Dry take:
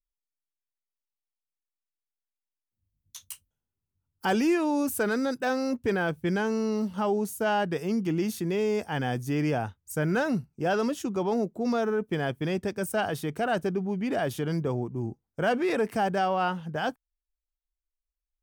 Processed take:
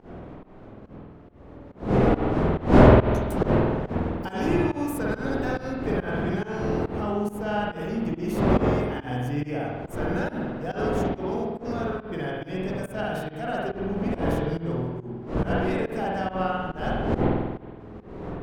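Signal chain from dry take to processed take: wind noise 420 Hz -24 dBFS; spring tank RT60 1.3 s, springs 48 ms, chirp 30 ms, DRR -4.5 dB; pump 140 bpm, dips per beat 1, -20 dB, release 0.149 s; gain -7 dB

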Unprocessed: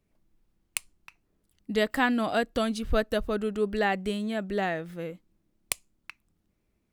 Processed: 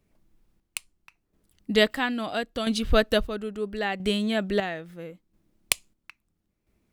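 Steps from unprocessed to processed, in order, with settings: chopper 0.75 Hz, depth 60%, duty 45%; dynamic EQ 3400 Hz, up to +6 dB, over -51 dBFS, Q 1.1; gain +4.5 dB

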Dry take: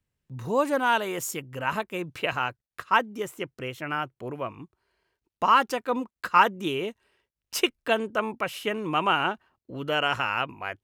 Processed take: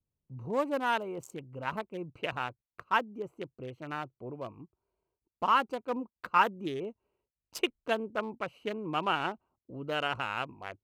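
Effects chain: Wiener smoothing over 25 samples; gain -5.5 dB

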